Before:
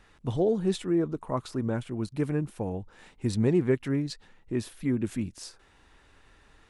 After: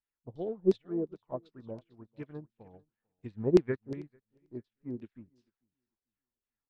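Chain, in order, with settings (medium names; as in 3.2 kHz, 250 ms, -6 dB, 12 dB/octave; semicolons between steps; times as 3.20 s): LFO low-pass saw down 2.8 Hz 360–5000 Hz; on a send: feedback delay 445 ms, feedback 36%, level -13 dB; on the sum: upward expansion 2.5:1, over -43 dBFS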